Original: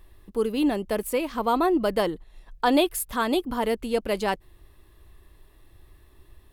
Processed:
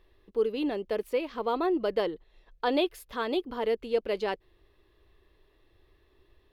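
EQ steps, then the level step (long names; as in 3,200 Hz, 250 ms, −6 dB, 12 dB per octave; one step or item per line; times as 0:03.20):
high-frequency loss of the air 270 metres
first-order pre-emphasis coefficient 0.9
parametric band 440 Hz +11 dB 1 octave
+7.5 dB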